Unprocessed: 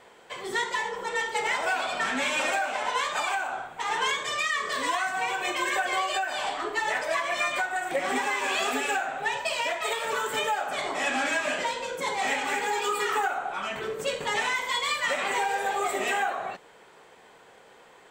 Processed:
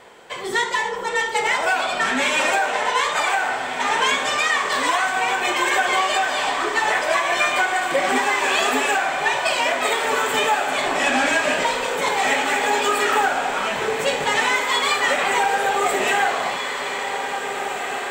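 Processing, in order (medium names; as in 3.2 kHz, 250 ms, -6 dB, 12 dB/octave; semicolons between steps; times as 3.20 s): 10.87–11.84 s: bass shelf 160 Hz +7.5 dB; echo that smears into a reverb 1892 ms, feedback 59%, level -7 dB; trim +7 dB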